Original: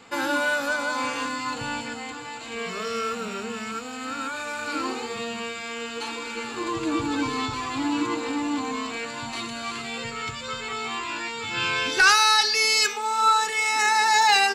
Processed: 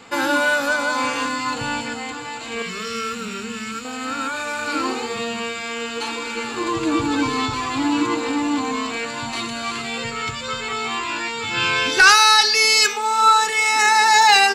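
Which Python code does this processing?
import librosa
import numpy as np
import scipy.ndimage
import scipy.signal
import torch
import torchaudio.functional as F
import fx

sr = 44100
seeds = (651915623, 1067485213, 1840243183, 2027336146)

y = fx.peak_eq(x, sr, hz=690.0, db=-14.5, octaves=1.1, at=(2.62, 3.85))
y = y * librosa.db_to_amplitude(5.5)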